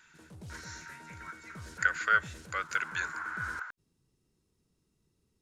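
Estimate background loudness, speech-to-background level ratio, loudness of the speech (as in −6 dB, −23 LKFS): −51.5 LKFS, 19.5 dB, −32.0 LKFS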